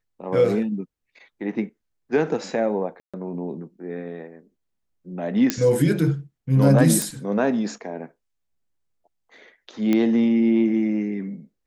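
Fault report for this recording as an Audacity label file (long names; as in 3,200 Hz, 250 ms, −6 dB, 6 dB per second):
3.000000	3.140000	drop-out 136 ms
5.500000	5.500000	click −4 dBFS
7.020000	7.020000	click
9.930000	9.930000	click −10 dBFS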